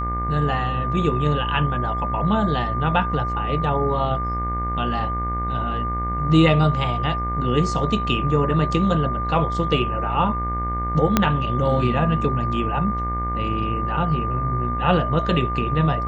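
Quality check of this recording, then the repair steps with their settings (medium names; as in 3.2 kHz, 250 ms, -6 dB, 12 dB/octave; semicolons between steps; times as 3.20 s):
buzz 60 Hz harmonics 37 -27 dBFS
whine 1.2 kHz -25 dBFS
11.17 s: pop -1 dBFS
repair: de-click; de-hum 60 Hz, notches 37; band-stop 1.2 kHz, Q 30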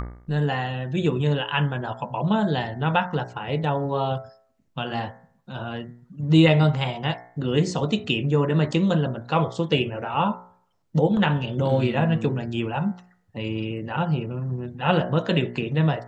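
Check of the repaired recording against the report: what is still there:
11.17 s: pop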